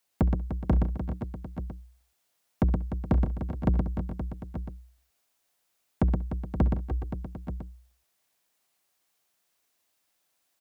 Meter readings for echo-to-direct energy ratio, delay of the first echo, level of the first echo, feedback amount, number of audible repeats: -2.0 dB, 67 ms, -19.5 dB, no steady repeat, 10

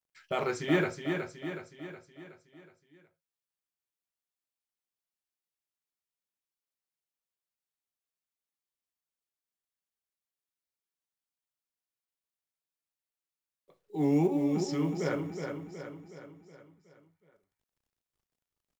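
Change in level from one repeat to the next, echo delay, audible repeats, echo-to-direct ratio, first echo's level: -5.5 dB, 0.369 s, 6, -4.5 dB, -6.0 dB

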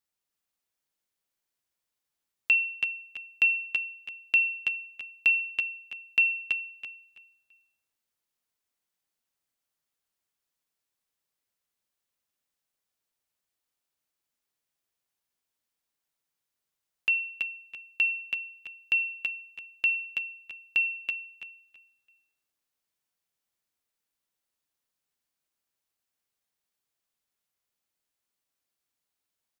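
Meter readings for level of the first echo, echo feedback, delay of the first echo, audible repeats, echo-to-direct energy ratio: -4.0 dB, 21%, 0.328 s, 3, -4.0 dB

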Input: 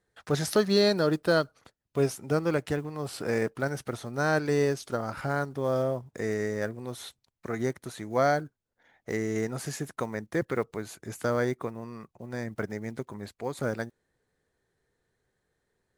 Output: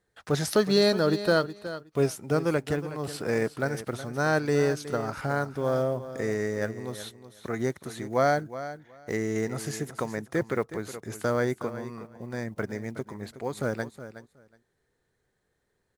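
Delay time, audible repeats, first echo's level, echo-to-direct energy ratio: 0.368 s, 2, -13.0 dB, -13.0 dB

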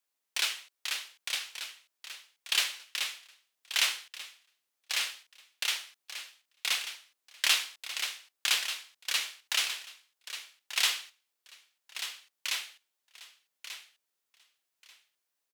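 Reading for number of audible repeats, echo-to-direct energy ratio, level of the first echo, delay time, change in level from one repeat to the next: 2, -10.5 dB, -10.5 dB, 1.188 s, -14.0 dB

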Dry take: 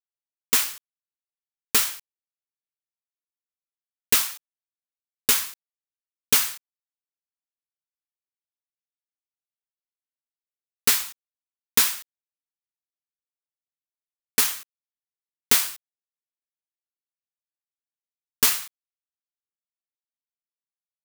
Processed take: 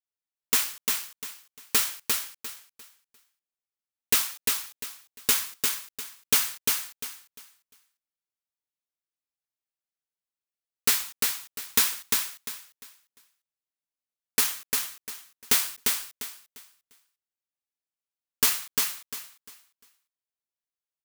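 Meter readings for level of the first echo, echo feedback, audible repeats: -3.5 dB, 26%, 3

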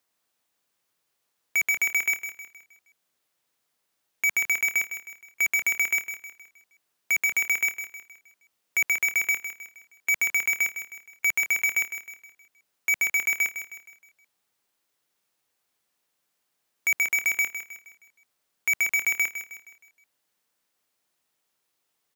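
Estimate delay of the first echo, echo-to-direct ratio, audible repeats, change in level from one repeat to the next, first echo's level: 0.157 s, -9.5 dB, 4, -7.5 dB, -10.5 dB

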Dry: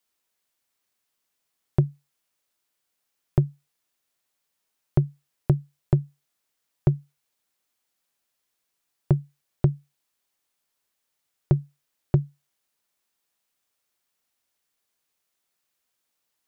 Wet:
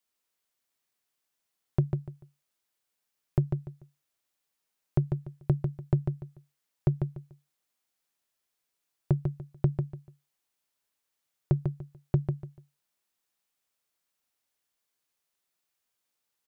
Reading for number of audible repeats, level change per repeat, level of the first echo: 3, -12.0 dB, -5.5 dB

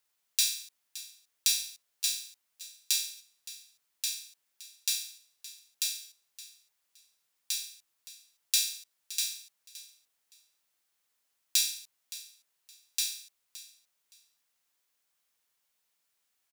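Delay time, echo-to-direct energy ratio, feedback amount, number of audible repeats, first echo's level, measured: 0.568 s, -16.5 dB, 21%, 2, -16.5 dB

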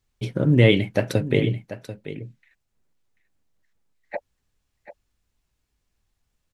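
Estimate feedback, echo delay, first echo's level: no steady repeat, 0.738 s, -13.0 dB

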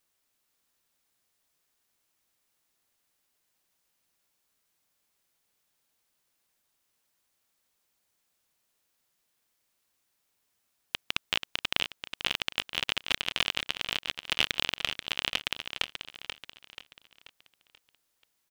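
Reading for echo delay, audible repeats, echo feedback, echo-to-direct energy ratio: 0.484 s, 4, 43%, -7.0 dB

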